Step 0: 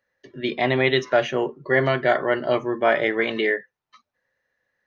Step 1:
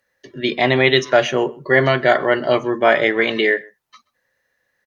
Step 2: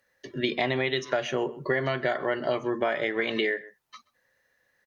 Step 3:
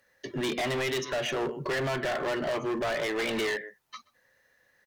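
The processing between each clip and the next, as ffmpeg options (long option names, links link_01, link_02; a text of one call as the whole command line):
ffmpeg -i in.wav -filter_complex "[0:a]aemphasis=mode=production:type=cd,asplit=2[link_01][link_02];[link_02]adelay=128.3,volume=-24dB,highshelf=frequency=4000:gain=-2.89[link_03];[link_01][link_03]amix=inputs=2:normalize=0,volume=5dB" out.wav
ffmpeg -i in.wav -af "acompressor=threshold=-22dB:ratio=10,volume=-1dB" out.wav
ffmpeg -i in.wav -af "volume=30.5dB,asoftclip=hard,volume=-30.5dB,volume=3.5dB" out.wav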